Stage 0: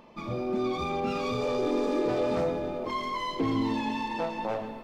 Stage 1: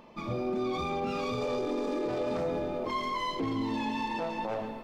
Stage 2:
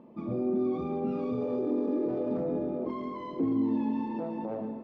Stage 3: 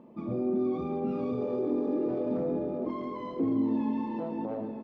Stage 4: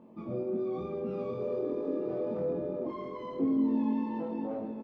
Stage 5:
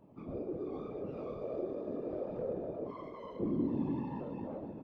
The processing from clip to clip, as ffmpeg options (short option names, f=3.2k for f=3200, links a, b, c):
-af "alimiter=limit=-24dB:level=0:latency=1:release=32"
-af "bandpass=f=260:t=q:w=1.3:csg=0,volume=5.5dB"
-af "aecho=1:1:917:0.224"
-filter_complex "[0:a]asplit=2[a][b];[b]adelay=22,volume=-2dB[c];[a][c]amix=inputs=2:normalize=0,volume=-4dB"
-af "afftfilt=real='hypot(re,im)*cos(2*PI*random(0))':imag='hypot(re,im)*sin(2*PI*random(1))':win_size=512:overlap=0.75"